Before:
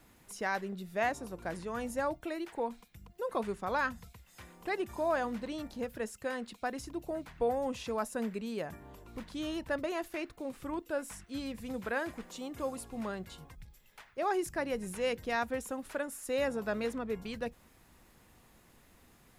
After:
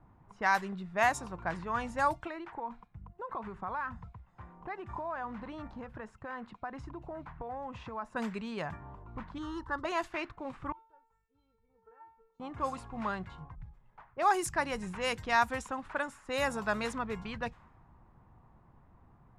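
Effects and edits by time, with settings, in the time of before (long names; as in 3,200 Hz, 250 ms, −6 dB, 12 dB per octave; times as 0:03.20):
0:02.27–0:08.16: downward compressor 10 to 1, threshold −37 dBFS
0:09.38–0:09.85: phaser with its sweep stopped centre 650 Hz, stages 6
0:10.72–0:12.40: tuned comb filter 450 Hz, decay 0.56 s, mix 100%
whole clip: low-pass that shuts in the quiet parts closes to 690 Hz, open at −28 dBFS; graphic EQ with 10 bands 125 Hz +5 dB, 250 Hz −5 dB, 500 Hz −8 dB, 1,000 Hz +8 dB, 8,000 Hz +6 dB; level +3.5 dB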